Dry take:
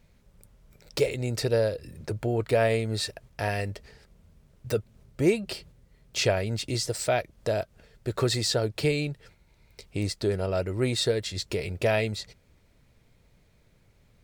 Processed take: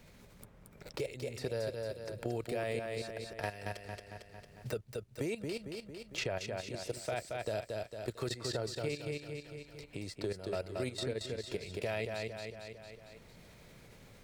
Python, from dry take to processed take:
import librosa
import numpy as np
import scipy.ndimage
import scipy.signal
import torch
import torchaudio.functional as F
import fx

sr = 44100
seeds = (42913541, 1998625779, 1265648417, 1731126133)

p1 = fx.low_shelf(x, sr, hz=170.0, db=-4.0)
p2 = fx.level_steps(p1, sr, step_db=14)
p3 = p2 + fx.echo_feedback(p2, sr, ms=226, feedback_pct=38, wet_db=-5.0, dry=0)
p4 = fx.band_squash(p3, sr, depth_pct=70)
y = F.gain(torch.from_numpy(p4), -6.5).numpy()